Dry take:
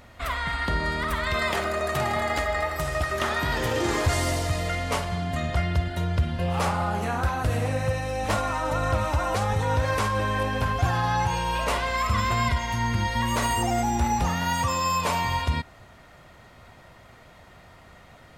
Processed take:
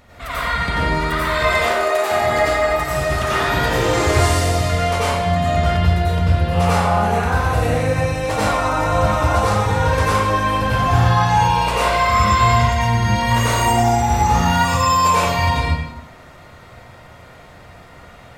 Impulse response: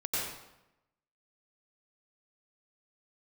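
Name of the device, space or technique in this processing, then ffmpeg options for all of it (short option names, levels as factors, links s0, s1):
bathroom: -filter_complex "[0:a]asettb=1/sr,asplit=3[s0][s1][s2];[s0]atrim=end=1.474[s3];[s1]atrim=start=1.47:end=2.11,asetpts=PTS-STARTPTS,afade=t=in:d=0.004:c=qsin,afade=t=out:st=0.636:d=0.004:c=qsin,highpass=f=330:w=0.5412,highpass=f=330:w=1.3066[s4];[s2]atrim=start=2.106[s5];[s3][s4]acrossfade=d=0.004:c1=hsin:c2=qsin[s6];[s6][s5]acrossfade=d=0.004:c1=qsin:c2=hsin[s7];[1:a]atrim=start_sample=2205[s8];[s7][s8]afir=irnorm=-1:irlink=0,volume=1.26"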